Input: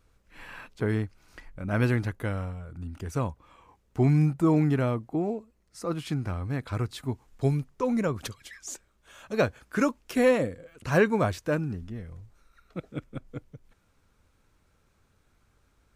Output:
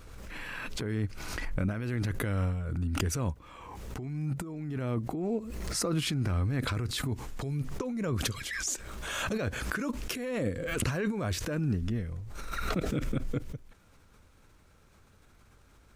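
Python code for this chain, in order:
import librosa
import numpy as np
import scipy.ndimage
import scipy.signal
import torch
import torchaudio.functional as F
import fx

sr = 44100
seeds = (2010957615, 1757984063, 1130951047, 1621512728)

y = fx.over_compress(x, sr, threshold_db=-32.0, ratio=-1.0)
y = fx.dynamic_eq(y, sr, hz=830.0, q=1.2, threshold_db=-51.0, ratio=4.0, max_db=-6)
y = fx.pre_swell(y, sr, db_per_s=27.0)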